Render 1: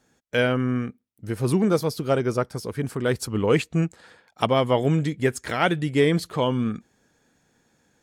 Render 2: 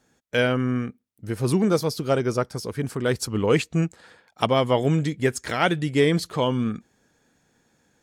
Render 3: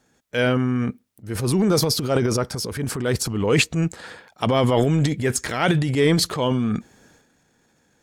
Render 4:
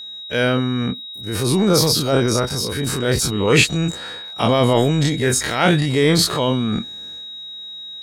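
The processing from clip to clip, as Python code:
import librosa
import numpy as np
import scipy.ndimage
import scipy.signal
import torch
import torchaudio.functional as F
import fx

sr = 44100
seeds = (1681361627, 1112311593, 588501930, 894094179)

y1 = fx.dynamic_eq(x, sr, hz=5700.0, q=1.1, threshold_db=-48.0, ratio=4.0, max_db=4)
y2 = fx.transient(y1, sr, attack_db=-4, sustain_db=10)
y2 = F.gain(torch.from_numpy(y2), 1.5).numpy()
y3 = fx.spec_dilate(y2, sr, span_ms=60)
y3 = y3 + 10.0 ** (-31.0 / 20.0) * np.sin(2.0 * np.pi * 3800.0 * np.arange(len(y3)) / sr)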